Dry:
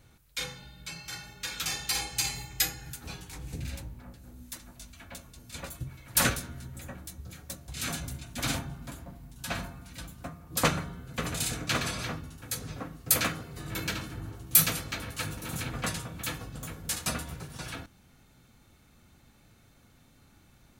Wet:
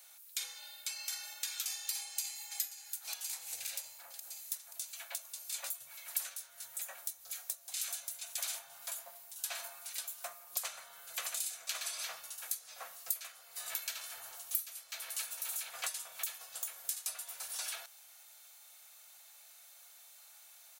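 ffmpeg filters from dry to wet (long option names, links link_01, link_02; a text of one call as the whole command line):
ffmpeg -i in.wav -filter_complex "[0:a]asplit=2[link_01][link_02];[link_02]afade=type=in:start_time=1.98:duration=0.01,afade=type=out:start_time=2.6:duration=0.01,aecho=0:1:530|1060|1590|2120|2650|3180:0.199526|0.109739|0.0603567|0.0331962|0.0182579|0.0100418[link_03];[link_01][link_03]amix=inputs=2:normalize=0,aderivative,acompressor=threshold=-48dB:ratio=6,lowshelf=frequency=430:width_type=q:width=3:gain=-14,volume=11dB" out.wav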